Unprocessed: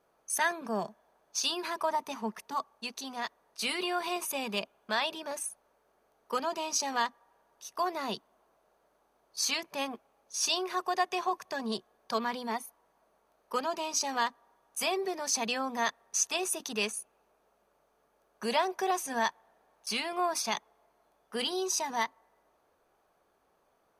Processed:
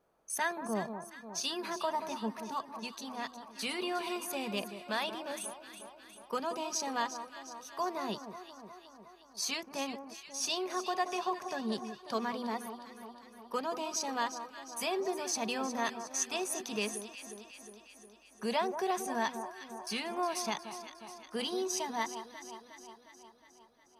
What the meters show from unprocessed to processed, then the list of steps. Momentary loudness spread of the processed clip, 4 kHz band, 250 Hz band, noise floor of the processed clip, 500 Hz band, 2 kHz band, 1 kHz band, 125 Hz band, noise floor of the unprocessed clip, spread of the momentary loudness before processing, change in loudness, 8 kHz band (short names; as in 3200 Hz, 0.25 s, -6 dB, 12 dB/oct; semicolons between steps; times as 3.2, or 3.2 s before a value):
16 LU, -4.5 dB, +0.5 dB, -60 dBFS, -1.5 dB, -4.0 dB, -3.0 dB, n/a, -72 dBFS, 9 LU, -3.5 dB, -4.5 dB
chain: low shelf 420 Hz +6.5 dB; echo with dull and thin repeats by turns 0.18 s, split 1300 Hz, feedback 77%, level -9 dB; gain -5 dB